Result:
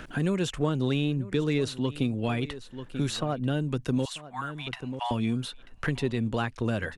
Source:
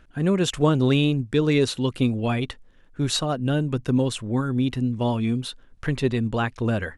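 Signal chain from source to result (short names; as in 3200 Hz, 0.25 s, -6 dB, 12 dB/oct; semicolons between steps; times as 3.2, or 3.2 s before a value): in parallel at -10.5 dB: soft clip -21 dBFS, distortion -10 dB; 4.05–5.11 on the sum: rippled Chebyshev high-pass 680 Hz, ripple 3 dB; echo 0.939 s -19.5 dB; three-band squash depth 70%; gain -7 dB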